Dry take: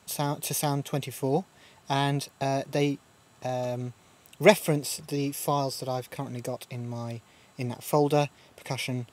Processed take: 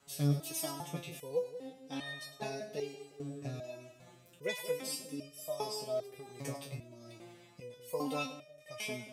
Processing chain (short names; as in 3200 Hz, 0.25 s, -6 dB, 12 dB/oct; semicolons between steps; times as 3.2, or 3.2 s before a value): split-band echo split 680 Hz, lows 0.18 s, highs 0.101 s, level -11.5 dB; rotary speaker horn 1.2 Hz; stepped resonator 2.5 Hz 140–610 Hz; gain +8 dB